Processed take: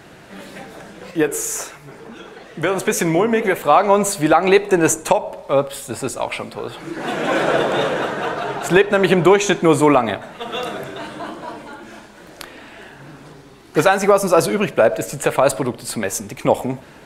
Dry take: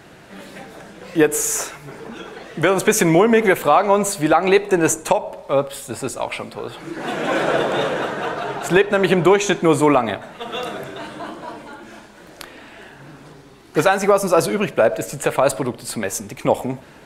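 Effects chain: 1.11–3.69 flange 1.6 Hz, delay 10 ms, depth 9.3 ms, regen -80%; gain +1.5 dB

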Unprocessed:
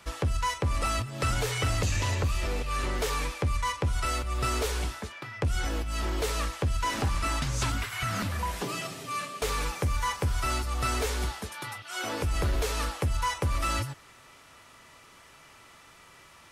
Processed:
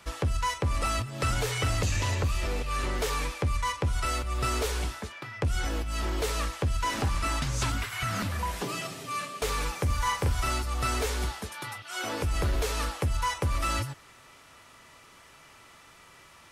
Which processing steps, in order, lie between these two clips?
9.85–10.49 doubler 39 ms -4 dB

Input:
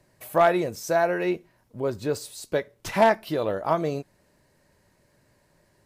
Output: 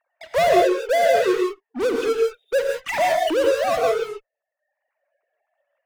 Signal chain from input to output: sine-wave speech; dynamic EQ 540 Hz, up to +4 dB, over -37 dBFS, Q 4.2; in parallel at -10 dB: fuzz box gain 45 dB, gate -52 dBFS; on the sum: reverb removal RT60 1 s; hard clip -14.5 dBFS, distortion -14 dB; non-linear reverb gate 0.19 s rising, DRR 1.5 dB; gain -1.5 dB

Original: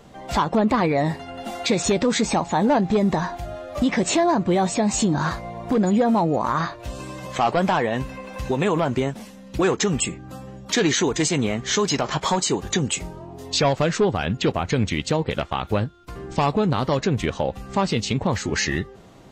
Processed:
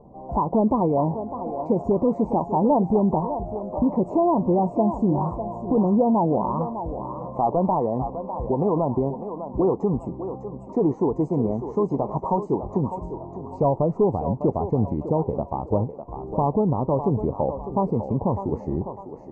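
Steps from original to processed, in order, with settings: elliptic low-pass 980 Hz, stop band 40 dB; thinning echo 0.602 s, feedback 45%, high-pass 430 Hz, level -7.5 dB

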